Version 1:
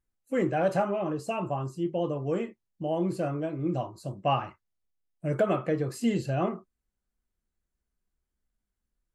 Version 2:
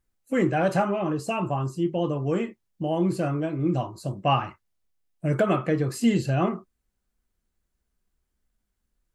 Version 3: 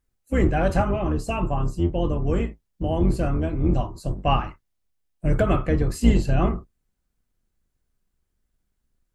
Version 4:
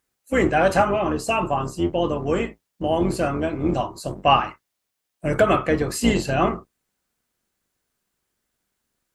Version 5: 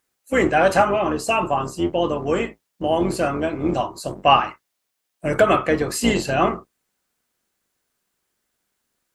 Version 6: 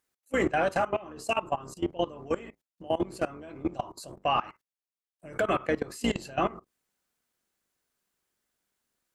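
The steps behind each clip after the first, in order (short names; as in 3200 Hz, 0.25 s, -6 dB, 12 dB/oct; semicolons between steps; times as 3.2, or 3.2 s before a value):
dynamic EQ 560 Hz, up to -5 dB, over -39 dBFS, Q 1.4; gain +6 dB
octaver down 2 oct, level +4 dB
HPF 530 Hz 6 dB/oct; gain +8 dB
low shelf 190 Hz -7 dB; gain +2.5 dB
level quantiser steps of 19 dB; gain -5.5 dB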